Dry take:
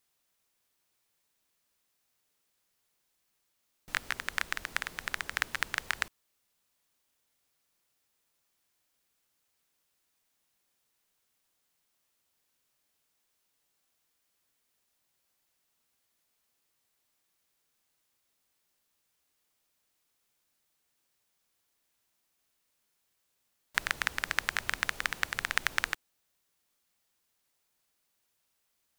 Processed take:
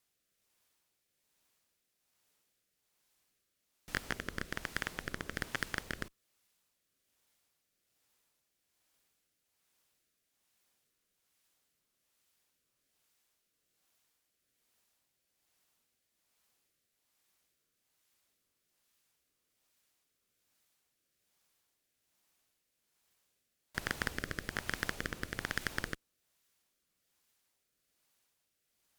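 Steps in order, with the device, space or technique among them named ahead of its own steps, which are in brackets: overdriven rotary cabinet (tube stage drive 26 dB, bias 0.75; rotary speaker horn 1.2 Hz); gain +6.5 dB

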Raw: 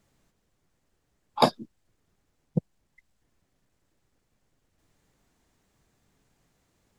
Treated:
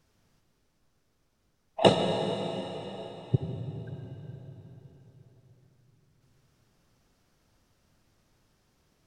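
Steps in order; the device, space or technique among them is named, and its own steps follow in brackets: slowed and reverbed (varispeed -23%; reverb RT60 4.3 s, pre-delay 61 ms, DRR 3.5 dB)

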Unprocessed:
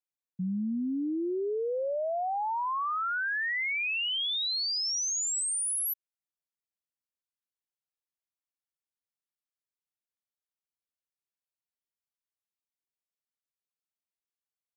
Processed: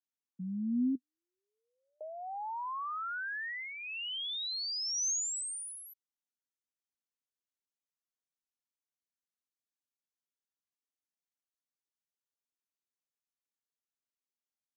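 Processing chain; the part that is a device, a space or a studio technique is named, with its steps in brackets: 0.95–2.01 Chebyshev band-pass 1200–8500 Hz, order 4; television speaker (speaker cabinet 180–8800 Hz, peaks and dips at 250 Hz +9 dB, 670 Hz -7 dB, 2300 Hz -7 dB, 6300 Hz +6 dB); gain -6.5 dB

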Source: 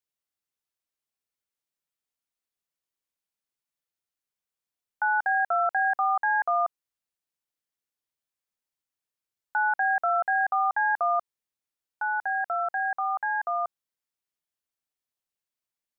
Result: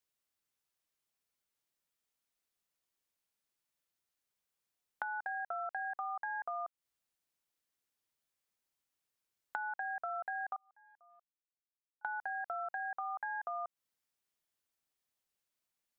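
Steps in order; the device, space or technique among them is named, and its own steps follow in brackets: 10.56–12.05 gate -18 dBFS, range -42 dB; serial compression, peaks first (compressor, threshold -33 dBFS, peak gain reduction 11 dB; compressor 3:1, threshold -40 dBFS, peak gain reduction 7.5 dB); gain +2 dB

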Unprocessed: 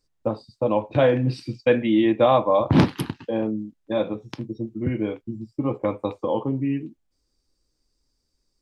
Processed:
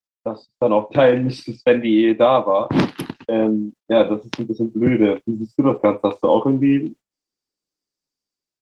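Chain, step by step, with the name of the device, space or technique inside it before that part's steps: video call (HPF 180 Hz 12 dB/oct; AGC gain up to 15 dB; gate -37 dBFS, range -24 dB; gain -1 dB; Opus 16 kbps 48000 Hz)

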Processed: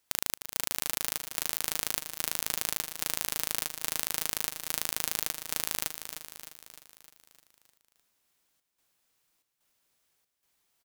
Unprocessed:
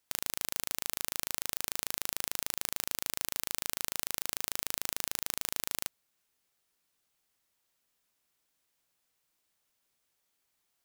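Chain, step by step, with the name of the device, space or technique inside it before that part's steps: trance gate with a delay (step gate "xxxx..xxx" 164 bpm -24 dB; feedback echo 0.305 s, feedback 56%, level -9 dB); gain +3.5 dB

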